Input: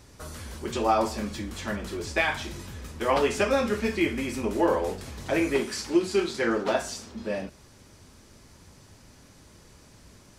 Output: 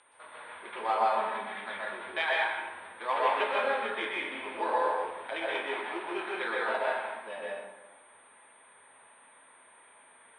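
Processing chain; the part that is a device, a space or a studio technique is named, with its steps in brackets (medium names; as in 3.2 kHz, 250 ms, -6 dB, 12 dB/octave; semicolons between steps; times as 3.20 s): 1.01–1.61 s: comb 4.7 ms, depth 84%; toy sound module (decimation joined by straight lines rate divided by 8×; class-D stage that switches slowly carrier 9 kHz; cabinet simulation 720–4500 Hz, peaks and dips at 950 Hz +6 dB, 1.6 kHz +3 dB, 2.3 kHz +4 dB, 3.6 kHz +9 dB); plate-style reverb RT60 1.1 s, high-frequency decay 0.55×, pre-delay 110 ms, DRR -4 dB; trim -6 dB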